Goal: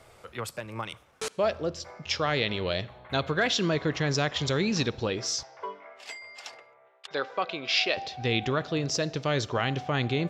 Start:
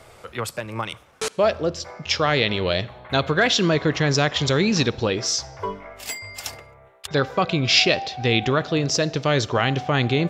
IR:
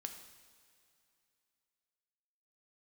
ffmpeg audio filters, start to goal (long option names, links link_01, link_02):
-filter_complex "[0:a]asettb=1/sr,asplit=3[link_01][link_02][link_03];[link_01]atrim=end=5.434[link_04];[link_02]atrim=start=5.43:end=7.97,asetpts=PTS-STARTPTS,afade=type=in:duration=0.004:curve=qsin,afade=type=out:start_time=2.536:duration=0.004:curve=qsin,highpass=430,lowpass=4700[link_05];[link_03]atrim=start=7.966[link_06];[link_04][link_05]acrossfade=duration=0.004:curve1=hsin:curve2=qsin[link_07];[link_07][link_06]acrossfade=duration=0.004:curve1=qsin:curve2=hsin,volume=-7dB"